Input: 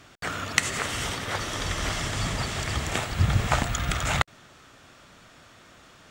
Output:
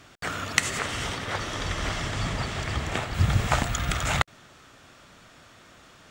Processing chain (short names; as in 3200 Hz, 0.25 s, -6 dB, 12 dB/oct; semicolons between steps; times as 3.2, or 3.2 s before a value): 0.78–3.13 high shelf 9900 Hz -> 5500 Hz -11 dB